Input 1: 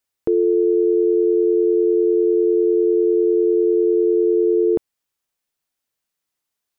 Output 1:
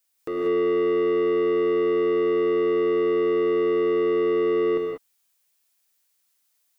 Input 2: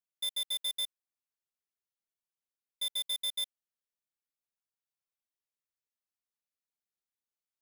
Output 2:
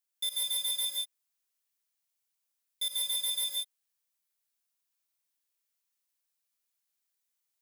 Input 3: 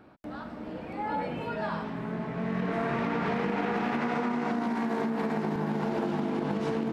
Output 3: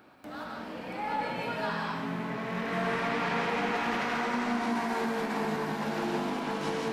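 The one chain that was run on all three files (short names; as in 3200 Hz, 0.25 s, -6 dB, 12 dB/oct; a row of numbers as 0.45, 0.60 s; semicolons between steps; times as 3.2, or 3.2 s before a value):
tilt +2.5 dB/oct; soft clip -26 dBFS; non-linear reverb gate 0.21 s rising, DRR -0.5 dB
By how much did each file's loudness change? -5.0, +3.0, -0.5 LU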